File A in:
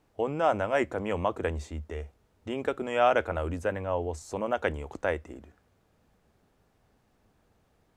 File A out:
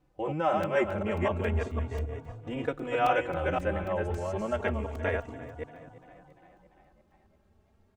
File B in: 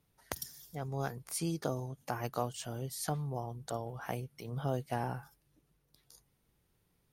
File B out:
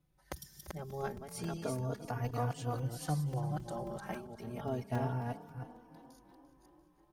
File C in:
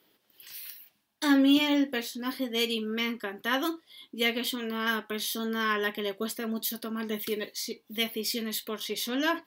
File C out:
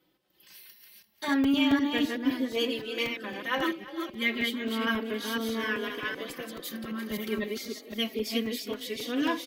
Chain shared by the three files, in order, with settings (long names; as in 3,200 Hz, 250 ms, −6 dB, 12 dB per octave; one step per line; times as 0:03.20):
delay that plays each chunk backwards 256 ms, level −3 dB
spectral tilt −1.5 dB per octave
echo with shifted repeats 344 ms, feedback 61%, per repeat +35 Hz, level −16 dB
dynamic equaliser 2,300 Hz, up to +5 dB, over −46 dBFS, Q 1.3
regular buffer underruns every 0.27 s, samples 128, zero, from 0:00.63
barber-pole flanger 3.5 ms +0.31 Hz
level −1 dB